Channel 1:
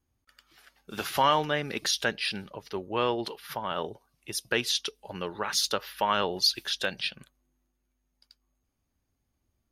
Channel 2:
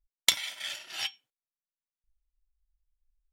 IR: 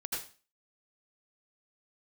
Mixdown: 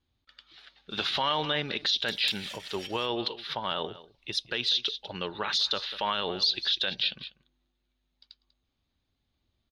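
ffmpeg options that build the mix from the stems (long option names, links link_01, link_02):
-filter_complex "[0:a]lowpass=frequency=3800:width_type=q:width=4.7,volume=-0.5dB,asplit=3[link_01][link_02][link_03];[link_02]volume=-19dB[link_04];[1:a]adelay=1800,volume=-3.5dB,asplit=2[link_05][link_06];[link_06]volume=-7dB[link_07];[link_03]apad=whole_len=226144[link_08];[link_05][link_08]sidechaincompress=threshold=-38dB:ratio=8:attack=16:release=177[link_09];[link_04][link_07]amix=inputs=2:normalize=0,aecho=0:1:194:1[link_10];[link_01][link_09][link_10]amix=inputs=3:normalize=0,alimiter=limit=-17dB:level=0:latency=1:release=42"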